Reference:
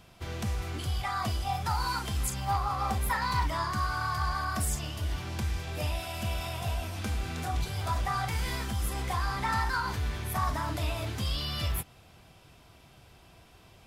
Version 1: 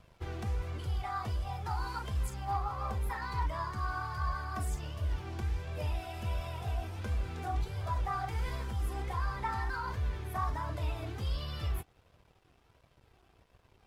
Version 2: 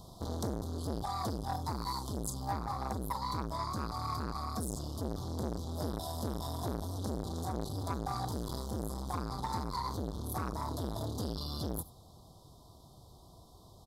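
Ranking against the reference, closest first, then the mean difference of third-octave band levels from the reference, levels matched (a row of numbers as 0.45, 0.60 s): 1, 2; 4.5, 6.5 dB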